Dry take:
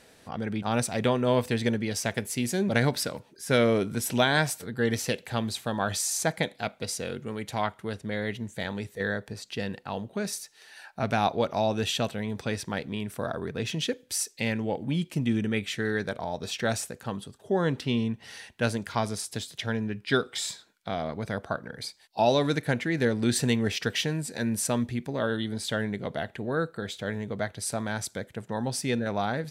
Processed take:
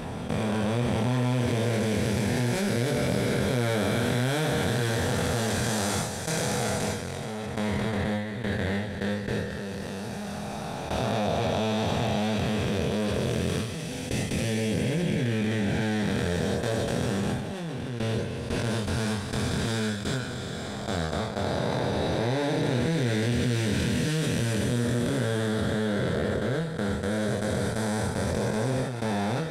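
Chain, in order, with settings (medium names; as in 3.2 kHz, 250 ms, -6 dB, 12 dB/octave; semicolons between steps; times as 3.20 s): spectral blur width 1370 ms; gate with hold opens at -25 dBFS; chorus voices 6, 0.14 Hz, delay 24 ms, depth 1.3 ms; level flattener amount 70%; trim +5.5 dB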